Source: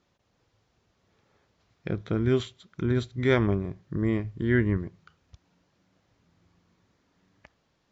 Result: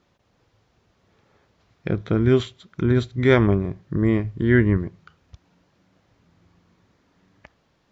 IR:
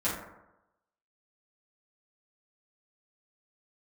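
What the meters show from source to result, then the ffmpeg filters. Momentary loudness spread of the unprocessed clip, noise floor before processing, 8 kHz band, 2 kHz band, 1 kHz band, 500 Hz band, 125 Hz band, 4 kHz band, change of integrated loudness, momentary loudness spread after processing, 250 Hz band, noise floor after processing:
11 LU, -72 dBFS, n/a, +6.0 dB, +6.0 dB, +6.5 dB, +6.5 dB, +4.5 dB, +6.5 dB, 11 LU, +6.5 dB, -66 dBFS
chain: -af "highshelf=f=4.8k:g=-5.5,volume=6.5dB"

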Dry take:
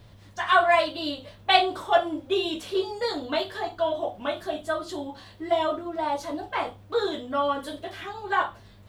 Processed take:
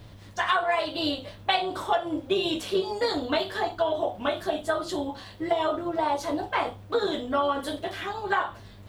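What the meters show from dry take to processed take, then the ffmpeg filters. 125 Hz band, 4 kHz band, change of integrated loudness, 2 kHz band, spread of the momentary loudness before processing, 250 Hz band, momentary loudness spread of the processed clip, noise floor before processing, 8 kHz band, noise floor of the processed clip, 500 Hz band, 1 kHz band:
+4.0 dB, -1.0 dB, -1.5 dB, -2.5 dB, 13 LU, +2.0 dB, 6 LU, -51 dBFS, +2.5 dB, -47 dBFS, -1.0 dB, -2.0 dB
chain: -af "tremolo=f=200:d=0.4,acompressor=threshold=-26dB:ratio=12,volume=5.5dB"

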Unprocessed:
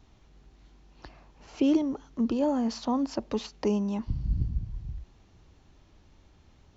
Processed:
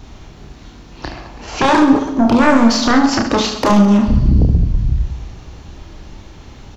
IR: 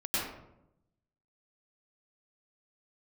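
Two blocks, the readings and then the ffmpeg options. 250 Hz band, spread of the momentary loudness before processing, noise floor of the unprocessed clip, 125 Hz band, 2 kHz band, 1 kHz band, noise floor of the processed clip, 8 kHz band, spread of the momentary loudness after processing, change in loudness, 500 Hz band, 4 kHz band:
+15.0 dB, 12 LU, -60 dBFS, +18.0 dB, +29.0 dB, +22.0 dB, -39 dBFS, n/a, 20 LU, +16.0 dB, +13.5 dB, +21.5 dB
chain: -filter_complex "[0:a]aeval=exprs='0.211*sin(PI/2*3.98*val(0)/0.211)':c=same,aecho=1:1:30|72|130.8|213.1|328.4:0.631|0.398|0.251|0.158|0.1,asplit=2[a][b];[1:a]atrim=start_sample=2205[c];[b][c]afir=irnorm=-1:irlink=0,volume=-20dB[d];[a][d]amix=inputs=2:normalize=0,volume=3.5dB"

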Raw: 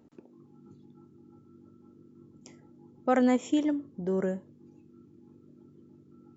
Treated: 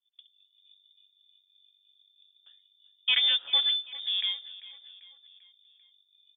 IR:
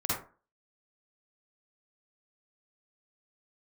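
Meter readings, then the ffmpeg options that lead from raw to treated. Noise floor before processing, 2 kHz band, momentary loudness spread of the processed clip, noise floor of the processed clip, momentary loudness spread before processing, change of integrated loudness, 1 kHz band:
-58 dBFS, +6.5 dB, 16 LU, -71 dBFS, 10 LU, +3.5 dB, -15.0 dB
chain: -filter_complex "[0:a]agate=range=-33dB:threshold=-48dB:ratio=3:detection=peak,highshelf=f=2k:g=7.5,aecho=1:1:7.1:0.37,acrossover=split=190|1000[a][b][c];[a]acrusher=bits=3:mix=0:aa=0.000001[d];[d][b][c]amix=inputs=3:normalize=0,adynamicsmooth=sensitivity=6:basefreq=880,asplit=2[e][f];[f]aecho=0:1:393|786|1179|1572:0.133|0.0693|0.0361|0.0188[g];[e][g]amix=inputs=2:normalize=0,lowpass=f=3.2k:t=q:w=0.5098,lowpass=f=3.2k:t=q:w=0.6013,lowpass=f=3.2k:t=q:w=0.9,lowpass=f=3.2k:t=q:w=2.563,afreqshift=-3800"

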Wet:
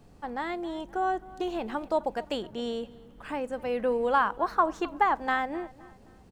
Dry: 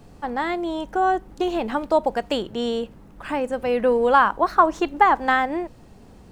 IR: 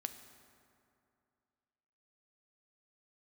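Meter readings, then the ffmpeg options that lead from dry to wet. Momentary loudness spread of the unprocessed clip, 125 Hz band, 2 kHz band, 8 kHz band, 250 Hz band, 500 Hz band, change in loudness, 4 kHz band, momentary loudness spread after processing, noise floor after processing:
12 LU, -8.0 dB, -8.0 dB, n/a, -8.0 dB, -8.0 dB, -8.0 dB, -8.0 dB, 12 LU, -54 dBFS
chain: -filter_complex "[0:a]asplit=2[a][b];[b]adelay=260,lowpass=f=3.7k:p=1,volume=-20dB,asplit=2[c][d];[d]adelay=260,lowpass=f=3.7k:p=1,volume=0.42,asplit=2[e][f];[f]adelay=260,lowpass=f=3.7k:p=1,volume=0.42[g];[a][c][e][g]amix=inputs=4:normalize=0,volume=-8dB"

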